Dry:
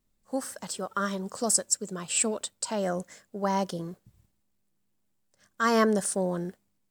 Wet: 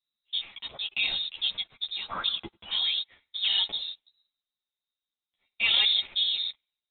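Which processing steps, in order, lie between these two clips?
feedback echo behind a high-pass 94 ms, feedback 41%, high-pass 1.5 kHz, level -19 dB; waveshaping leveller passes 2; high-pass 41 Hz; frequency inversion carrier 3.9 kHz; three-phase chorus; trim -3.5 dB

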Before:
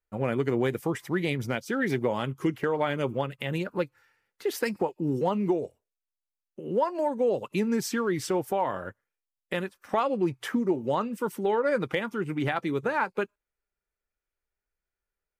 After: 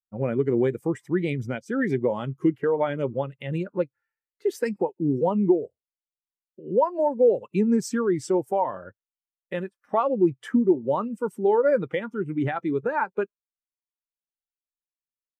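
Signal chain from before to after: dynamic bell 7.7 kHz, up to +6 dB, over -58 dBFS, Q 1.5; spectral contrast expander 1.5:1; trim +4 dB

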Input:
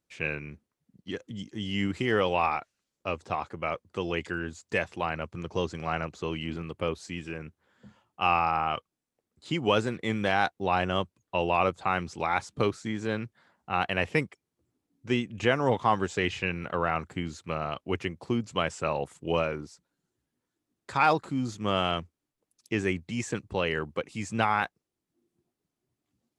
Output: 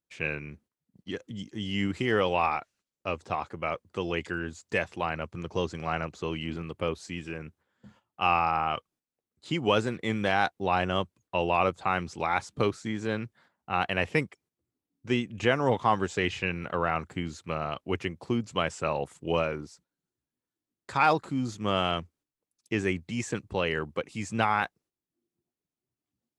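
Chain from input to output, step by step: gate -59 dBFS, range -9 dB

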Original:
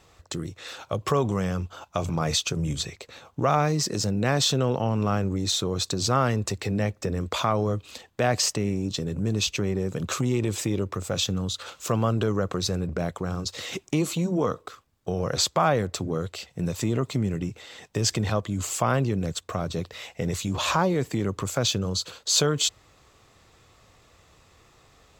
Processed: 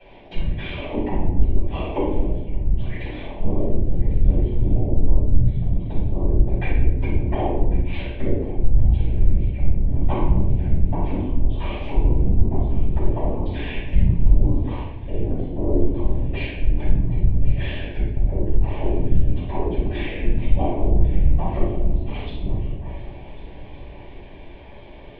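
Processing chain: companding laws mixed up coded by mu; high-pass 110 Hz 24 dB/octave; low-pass that closes with the level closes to 330 Hz, closed at -22.5 dBFS; bass shelf 170 Hz +10.5 dB; transient shaper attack -1 dB, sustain +8 dB; static phaser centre 420 Hz, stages 6; whisper effect; mistuned SSB -260 Hz 270–3200 Hz; shuffle delay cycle 1461 ms, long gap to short 3:1, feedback 41%, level -18 dB; reverberation RT60 0.85 s, pre-delay 3 ms, DRR -12.5 dB; trim -5 dB

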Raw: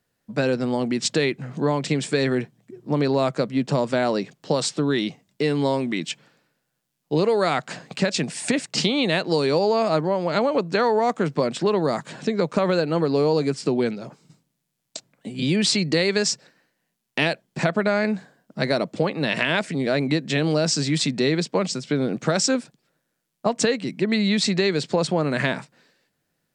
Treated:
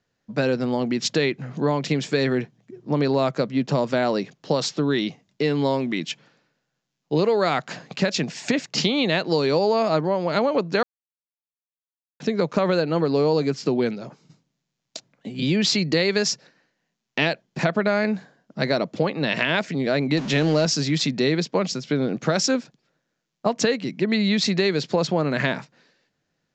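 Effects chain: 20.17–20.66 s: jump at every zero crossing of -27.5 dBFS; steep low-pass 7.1 kHz 72 dB/octave; 10.83–12.20 s: mute

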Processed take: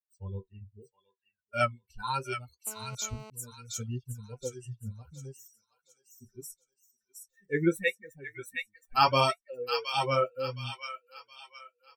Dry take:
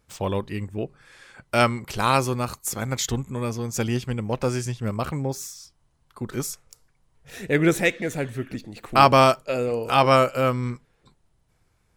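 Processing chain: expander on every frequency bin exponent 3; 8.24–9.35 s: treble shelf 2.5 kHz +8 dB; comb 2.2 ms, depth 51%; dynamic bell 190 Hz, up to +3 dB, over -52 dBFS, Q 6.1; flange 0.74 Hz, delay 6.8 ms, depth 7.4 ms, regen -39%; feedback echo behind a high-pass 718 ms, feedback 33%, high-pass 1.8 kHz, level -3.5 dB; 2.67–3.30 s: mobile phone buzz -47 dBFS; trim -1 dB

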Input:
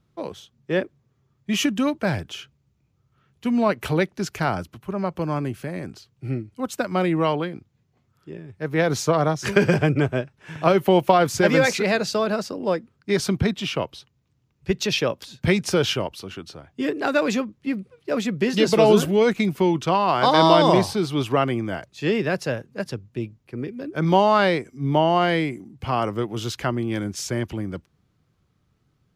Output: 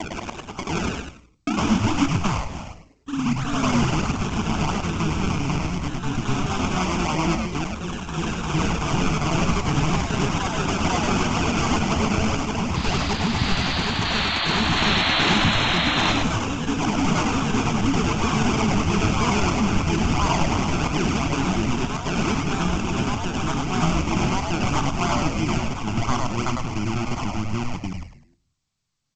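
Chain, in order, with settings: slices played last to first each 98 ms, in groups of 3; gate with hold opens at -51 dBFS; bass shelf 140 Hz -4.5 dB; in parallel at +0.5 dB: compression 8:1, threshold -29 dBFS, peak gain reduction 18 dB; on the sum: peak limiter -11.5 dBFS, peak gain reduction 10.5 dB; decimation with a swept rate 31×, swing 100% 2.9 Hz; static phaser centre 2.6 kHz, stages 8; painted sound noise, 14.76–16.13 s, 610–4300 Hz -25 dBFS; frequency-shifting echo 102 ms, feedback 32%, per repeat -110 Hz, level -3 dB; ever faster or slower copies 114 ms, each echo +1 st, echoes 3; on a send at -14 dB: reverberation RT60 0.45 s, pre-delay 4 ms; on the sum: G.722 64 kbps 16 kHz

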